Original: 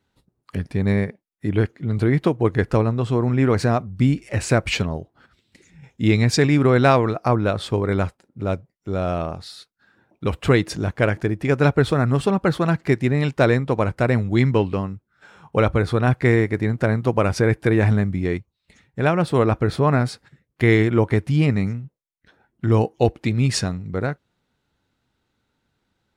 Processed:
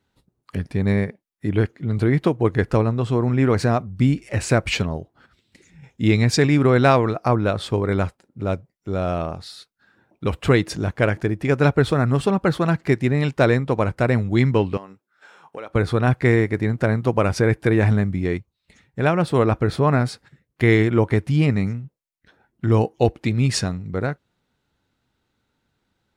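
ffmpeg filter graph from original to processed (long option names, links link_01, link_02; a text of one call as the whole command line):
ffmpeg -i in.wav -filter_complex "[0:a]asettb=1/sr,asplit=3[link_01][link_02][link_03];[link_01]atrim=end=14.774[link_04];[link_02]atrim=start=14.77:end=15.75,asetpts=PTS-STARTPTS,afade=type=in:duration=0.004:curve=qsin,afade=type=out:start_time=0.976:duration=0.004:curve=qsin,highpass=380,acompressor=threshold=-34dB:ratio=3:attack=3.2:release=140:knee=1:detection=peak[link_05];[link_03]atrim=start=15.746[link_06];[link_04][link_05]acrossfade=duration=0.004:curve1=hsin:curve2=qsin[link_07];[link_07][link_06]acrossfade=duration=0.004:curve1=qsin:curve2=hsin" out.wav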